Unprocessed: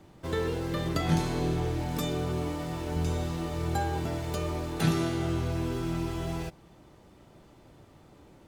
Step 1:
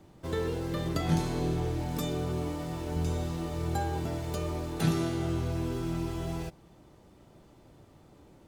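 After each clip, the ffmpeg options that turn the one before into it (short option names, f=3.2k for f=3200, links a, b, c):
-af "equalizer=f=2k:w=0.56:g=-3,volume=-1dB"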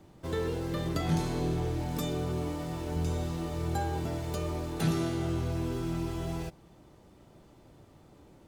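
-af "asoftclip=type=tanh:threshold=-18dB"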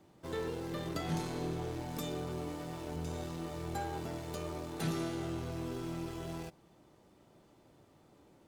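-af "aeval=exprs='0.119*(cos(1*acos(clip(val(0)/0.119,-1,1)))-cos(1*PI/2))+0.00596*(cos(8*acos(clip(val(0)/0.119,-1,1)))-cos(8*PI/2))':c=same,lowshelf=f=96:g=-12,volume=-4.5dB"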